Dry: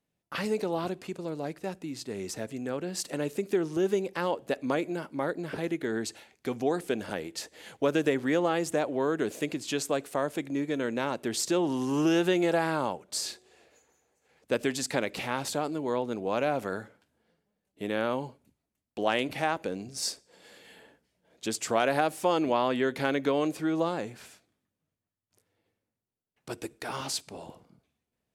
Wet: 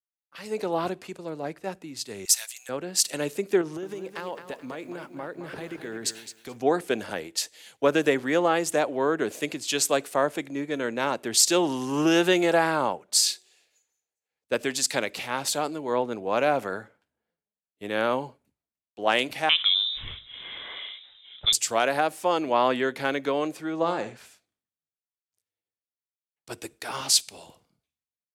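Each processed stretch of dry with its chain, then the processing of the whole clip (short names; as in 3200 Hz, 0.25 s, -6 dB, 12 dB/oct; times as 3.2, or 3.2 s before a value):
2.25–2.69 HPF 870 Hz 24 dB/oct + high shelf 5900 Hz +11.5 dB
3.61–6.59 compressor, threshold -31 dBFS + lo-fi delay 0.216 s, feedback 35%, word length 10-bit, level -8 dB
19.49–21.53 inverted band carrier 3800 Hz + fast leveller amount 50%
23.76–24.17 LPF 8900 Hz 24 dB/oct + flutter echo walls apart 11.2 m, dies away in 0.36 s
whole clip: low shelf 380 Hz -8 dB; AGC gain up to 15 dB; three-band expander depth 70%; gain -7.5 dB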